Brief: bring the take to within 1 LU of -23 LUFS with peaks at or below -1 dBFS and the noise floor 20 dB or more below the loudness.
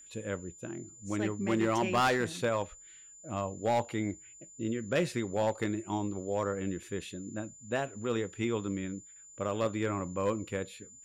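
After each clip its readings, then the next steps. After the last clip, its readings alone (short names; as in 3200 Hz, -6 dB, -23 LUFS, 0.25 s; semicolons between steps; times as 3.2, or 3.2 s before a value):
clipped 0.7%; flat tops at -22.0 dBFS; steady tone 7100 Hz; tone level -51 dBFS; loudness -33.5 LUFS; peak -22.0 dBFS; loudness target -23.0 LUFS
-> clip repair -22 dBFS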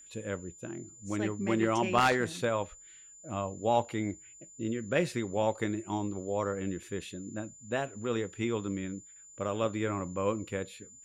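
clipped 0.0%; steady tone 7100 Hz; tone level -51 dBFS
-> notch 7100 Hz, Q 30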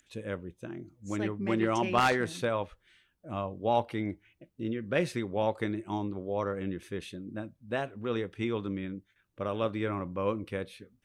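steady tone none; loudness -32.5 LUFS; peak -13.0 dBFS; loudness target -23.0 LUFS
-> gain +9.5 dB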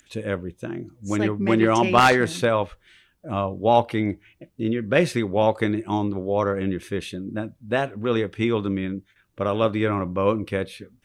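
loudness -23.0 LUFS; peak -3.5 dBFS; noise floor -64 dBFS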